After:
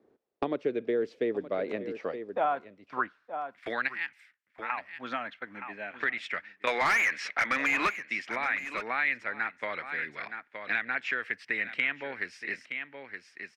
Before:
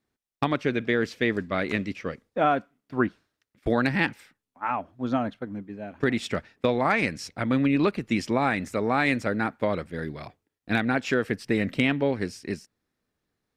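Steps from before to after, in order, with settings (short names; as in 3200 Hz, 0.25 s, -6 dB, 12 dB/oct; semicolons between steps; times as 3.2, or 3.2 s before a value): 3.88–4.7 pre-emphasis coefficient 0.8; band-pass sweep 450 Hz -> 2000 Hz, 1.35–3.78; 6.67–7.92 overdrive pedal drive 25 dB, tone 3200 Hz, clips at -14.5 dBFS; echo 0.92 s -16 dB; three-band squash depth 70%; gain +1.5 dB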